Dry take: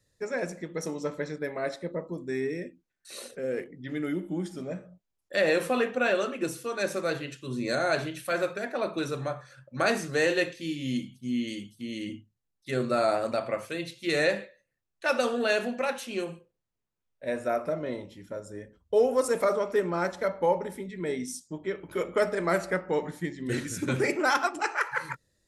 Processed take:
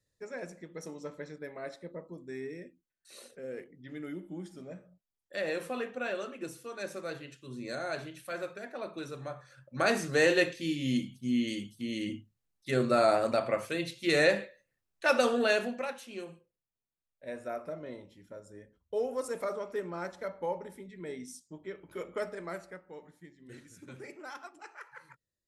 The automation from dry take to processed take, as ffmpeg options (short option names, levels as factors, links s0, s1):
-af "volume=1.06,afade=t=in:st=9.19:d=1.06:silence=0.316228,afade=t=out:st=15.36:d=0.59:silence=0.316228,afade=t=out:st=22.15:d=0.66:silence=0.298538"